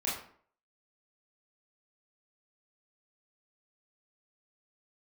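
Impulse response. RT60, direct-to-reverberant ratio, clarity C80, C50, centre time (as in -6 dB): 0.55 s, -7.5 dB, 8.0 dB, 4.0 dB, 45 ms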